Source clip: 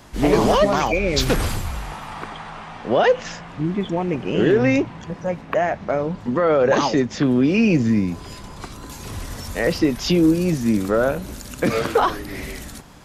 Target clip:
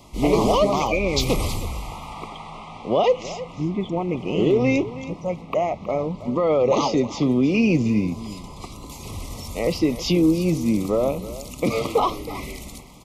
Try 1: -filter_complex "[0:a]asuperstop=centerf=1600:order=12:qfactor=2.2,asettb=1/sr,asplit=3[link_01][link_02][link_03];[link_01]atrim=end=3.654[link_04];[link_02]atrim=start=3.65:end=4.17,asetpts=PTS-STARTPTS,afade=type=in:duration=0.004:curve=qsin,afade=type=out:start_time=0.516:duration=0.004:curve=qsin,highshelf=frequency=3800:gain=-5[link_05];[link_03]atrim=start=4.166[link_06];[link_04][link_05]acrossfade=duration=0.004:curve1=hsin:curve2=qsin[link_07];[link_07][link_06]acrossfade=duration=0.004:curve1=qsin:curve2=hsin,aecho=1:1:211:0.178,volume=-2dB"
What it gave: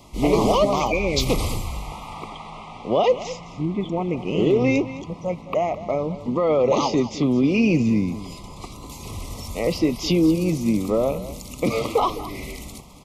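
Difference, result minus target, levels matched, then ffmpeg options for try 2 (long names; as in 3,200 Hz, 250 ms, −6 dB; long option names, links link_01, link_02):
echo 108 ms early
-filter_complex "[0:a]asuperstop=centerf=1600:order=12:qfactor=2.2,asettb=1/sr,asplit=3[link_01][link_02][link_03];[link_01]atrim=end=3.654[link_04];[link_02]atrim=start=3.65:end=4.17,asetpts=PTS-STARTPTS,afade=type=in:duration=0.004:curve=qsin,afade=type=out:start_time=0.516:duration=0.004:curve=qsin,highshelf=frequency=3800:gain=-5[link_05];[link_03]atrim=start=4.166[link_06];[link_04][link_05]acrossfade=duration=0.004:curve1=hsin:curve2=qsin[link_07];[link_07][link_06]acrossfade=duration=0.004:curve1=qsin:curve2=hsin,aecho=1:1:319:0.178,volume=-2dB"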